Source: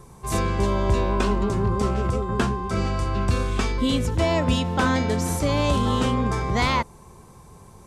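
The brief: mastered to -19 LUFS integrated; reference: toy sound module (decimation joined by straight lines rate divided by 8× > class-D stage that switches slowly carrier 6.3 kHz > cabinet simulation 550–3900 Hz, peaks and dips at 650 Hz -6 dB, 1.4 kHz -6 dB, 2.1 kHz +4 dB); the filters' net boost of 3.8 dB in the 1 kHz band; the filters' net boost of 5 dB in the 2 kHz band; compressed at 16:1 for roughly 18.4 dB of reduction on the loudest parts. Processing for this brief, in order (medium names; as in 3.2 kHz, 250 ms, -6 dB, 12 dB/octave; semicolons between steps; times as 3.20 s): peaking EQ 1 kHz +5.5 dB; peaking EQ 2 kHz +4 dB; compression 16:1, threshold -33 dBFS; decimation joined by straight lines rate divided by 8×; class-D stage that switches slowly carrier 6.3 kHz; cabinet simulation 550–3900 Hz, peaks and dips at 650 Hz -6 dB, 1.4 kHz -6 dB, 2.1 kHz +4 dB; trim +24.5 dB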